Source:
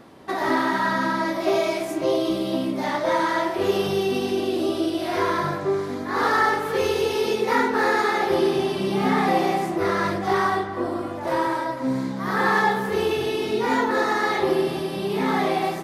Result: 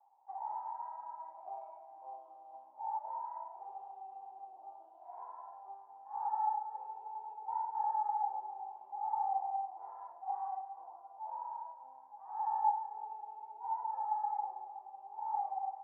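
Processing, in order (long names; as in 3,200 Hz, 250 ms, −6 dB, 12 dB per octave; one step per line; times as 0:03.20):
flat-topped band-pass 840 Hz, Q 7.2
level −6.5 dB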